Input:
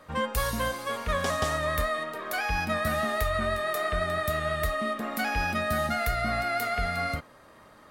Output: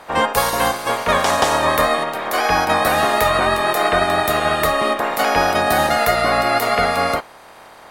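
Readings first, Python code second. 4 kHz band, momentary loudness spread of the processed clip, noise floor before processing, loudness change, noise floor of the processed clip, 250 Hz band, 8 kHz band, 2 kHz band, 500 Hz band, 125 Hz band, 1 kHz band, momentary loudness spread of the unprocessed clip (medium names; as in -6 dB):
+13.0 dB, 3 LU, -54 dBFS, +11.5 dB, -42 dBFS, +9.0 dB, +12.5 dB, +10.0 dB, +12.0 dB, +4.0 dB, +13.5 dB, 3 LU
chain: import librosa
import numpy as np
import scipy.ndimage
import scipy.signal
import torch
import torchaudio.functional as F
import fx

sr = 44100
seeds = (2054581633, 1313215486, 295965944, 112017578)

y = fx.spec_clip(x, sr, under_db=19)
y = fx.peak_eq(y, sr, hz=770.0, db=13.0, octaves=1.9)
y = y * 10.0 ** (4.5 / 20.0)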